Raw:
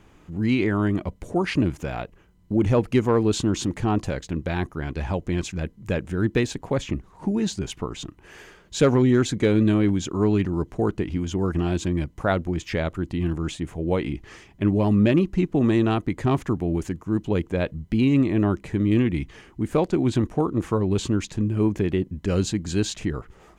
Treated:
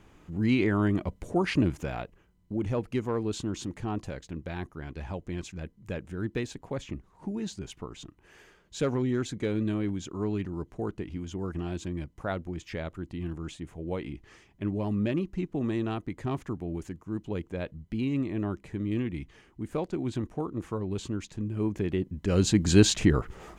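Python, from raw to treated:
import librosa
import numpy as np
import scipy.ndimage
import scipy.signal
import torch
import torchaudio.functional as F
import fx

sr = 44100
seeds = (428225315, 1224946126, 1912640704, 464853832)

y = fx.gain(x, sr, db=fx.line((1.77, -3.0), (2.6, -10.0), (21.32, -10.0), (22.31, -3.0), (22.63, 5.0)))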